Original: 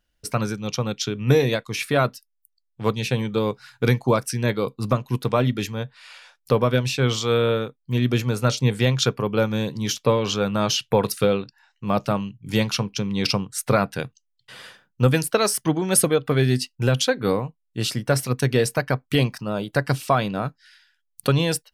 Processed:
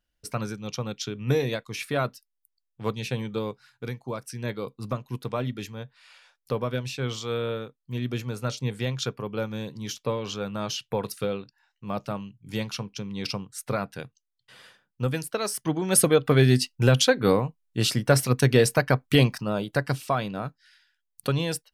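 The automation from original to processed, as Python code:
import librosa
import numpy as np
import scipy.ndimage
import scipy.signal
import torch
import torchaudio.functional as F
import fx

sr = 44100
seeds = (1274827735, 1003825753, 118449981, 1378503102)

y = fx.gain(x, sr, db=fx.line((3.35, -6.5), (3.97, -16.0), (4.46, -9.0), (15.39, -9.0), (16.19, 1.0), (19.32, 1.0), (20.05, -6.0)))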